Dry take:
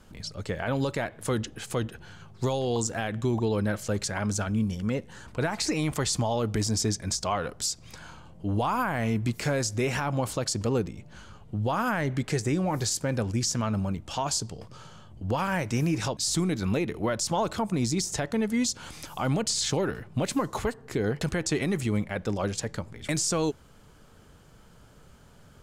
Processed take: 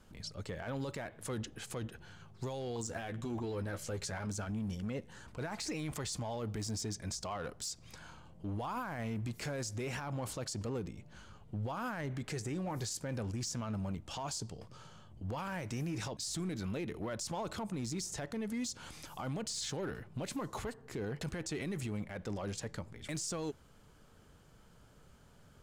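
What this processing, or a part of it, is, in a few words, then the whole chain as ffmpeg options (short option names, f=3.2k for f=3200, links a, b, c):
limiter into clipper: -filter_complex "[0:a]alimiter=limit=-23.5dB:level=0:latency=1:release=27,asoftclip=type=hard:threshold=-25.5dB,asettb=1/sr,asplit=3[a][b][c];[a]atrim=end=2.884[d];[b]atrim=start=2.88:end=4.27,asetpts=PTS-STARTPTS,afade=t=in:d=0.004:c=qsin,afade=t=out:st=1.386:d=0.004:c=qsin,asplit=2[e][f];[f]adelay=12,volume=-6dB[g];[e][g]amix=inputs=2:normalize=0,atrim=end_sample=61299[h];[c]atrim=start=4.266[i];[d][h]acrossfade=d=0.004:c1=hsin:c2=qsin[j];[j][i]acrossfade=d=0.004:c1=qsin:c2=hsin,volume=-7dB"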